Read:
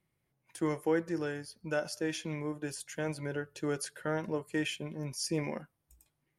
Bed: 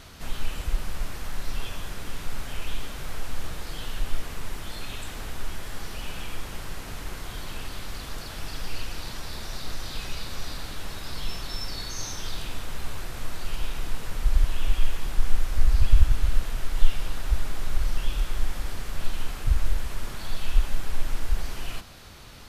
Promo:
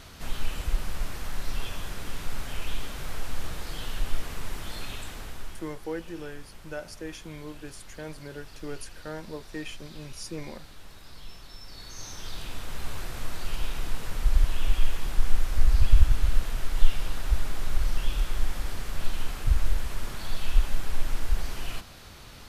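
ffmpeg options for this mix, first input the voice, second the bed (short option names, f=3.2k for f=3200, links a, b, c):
-filter_complex "[0:a]adelay=5000,volume=-4.5dB[a];[1:a]volume=11.5dB,afade=t=out:st=4.81:d=0.97:silence=0.251189,afade=t=in:st=11.63:d=1.34:silence=0.251189[b];[a][b]amix=inputs=2:normalize=0"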